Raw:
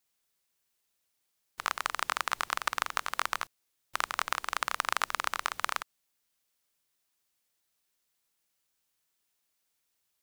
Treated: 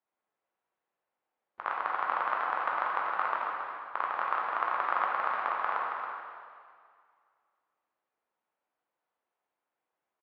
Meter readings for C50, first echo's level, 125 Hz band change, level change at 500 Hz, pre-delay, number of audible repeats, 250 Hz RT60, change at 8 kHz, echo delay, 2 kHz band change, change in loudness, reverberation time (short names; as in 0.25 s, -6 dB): -1.0 dB, -8.5 dB, n/a, +6.0 dB, 6 ms, 1, 2.2 s, under -35 dB, 0.275 s, -1.0 dB, +1.5 dB, 2.1 s